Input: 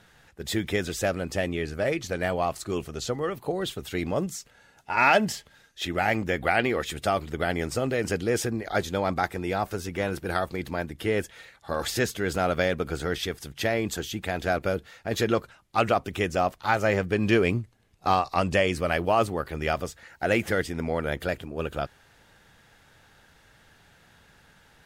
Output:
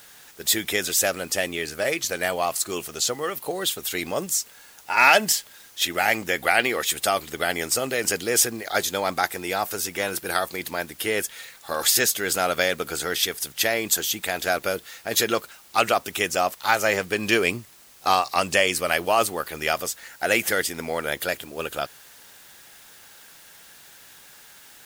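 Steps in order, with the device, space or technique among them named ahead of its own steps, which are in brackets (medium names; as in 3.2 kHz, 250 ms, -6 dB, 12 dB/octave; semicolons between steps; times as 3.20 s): turntable without a phono preamp (RIAA curve recording; white noise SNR 26 dB); trim +3 dB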